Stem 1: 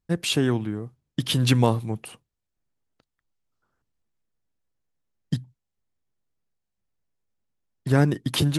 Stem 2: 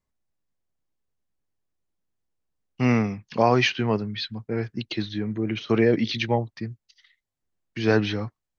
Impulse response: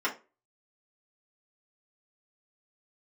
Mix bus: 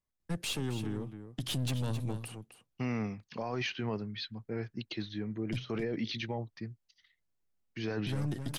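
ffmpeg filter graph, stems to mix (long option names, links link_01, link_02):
-filter_complex "[0:a]acrossover=split=160|3000[link_01][link_02][link_03];[link_02]acompressor=threshold=-28dB:ratio=2.5[link_04];[link_01][link_04][link_03]amix=inputs=3:normalize=0,aeval=exprs='(tanh(14.1*val(0)+0.55)-tanh(0.55))/14.1':channel_layout=same,adelay=200,volume=-2.5dB,asplit=2[link_05][link_06];[link_06]volume=-11.5dB[link_07];[1:a]alimiter=limit=-16dB:level=0:latency=1:release=11,volume=-9dB[link_08];[link_07]aecho=0:1:265:1[link_09];[link_05][link_08][link_09]amix=inputs=3:normalize=0,alimiter=level_in=2dB:limit=-24dB:level=0:latency=1:release=43,volume=-2dB"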